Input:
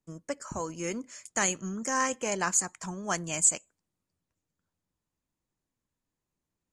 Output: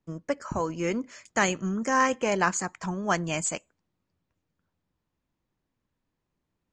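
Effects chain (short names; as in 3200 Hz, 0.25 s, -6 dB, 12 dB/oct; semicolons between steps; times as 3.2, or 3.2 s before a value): air absorption 150 m; gain +6.5 dB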